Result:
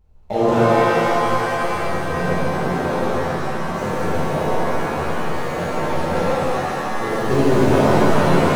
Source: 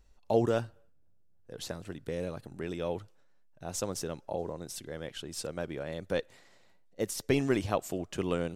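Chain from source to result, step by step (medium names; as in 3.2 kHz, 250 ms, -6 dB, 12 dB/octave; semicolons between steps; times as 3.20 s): median filter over 25 samples; pitch-shifted reverb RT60 3.6 s, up +7 st, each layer -2 dB, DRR -11.5 dB; trim +2 dB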